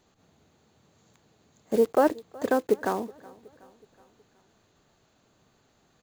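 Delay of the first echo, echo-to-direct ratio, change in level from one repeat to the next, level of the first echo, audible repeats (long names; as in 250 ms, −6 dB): 371 ms, −21.5 dB, −5.5 dB, −23.0 dB, 3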